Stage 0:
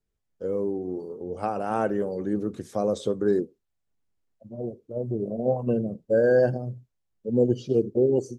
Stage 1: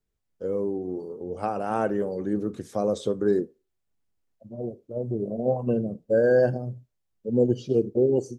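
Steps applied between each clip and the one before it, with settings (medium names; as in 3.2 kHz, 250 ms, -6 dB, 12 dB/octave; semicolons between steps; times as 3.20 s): on a send at -20 dB: tilt EQ +3.5 dB/octave + reverberation RT60 0.30 s, pre-delay 28 ms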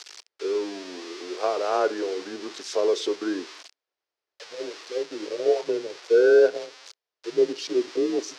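zero-crossing glitches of -24 dBFS; frequency shift -88 Hz; Chebyshev band-pass 410–5300 Hz, order 3; trim +4.5 dB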